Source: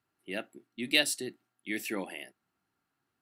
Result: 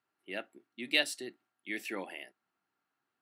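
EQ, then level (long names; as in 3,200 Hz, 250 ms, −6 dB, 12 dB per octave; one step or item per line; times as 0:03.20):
high-pass filter 470 Hz 6 dB per octave
high-shelf EQ 5,200 Hz −11 dB
0.0 dB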